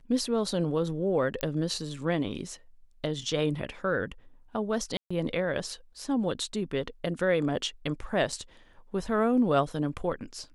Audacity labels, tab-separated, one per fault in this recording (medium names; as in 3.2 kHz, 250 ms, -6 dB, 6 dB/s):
1.410000	1.410000	pop -15 dBFS
4.970000	5.110000	dropout 135 ms
8.320000	8.320000	dropout 4.8 ms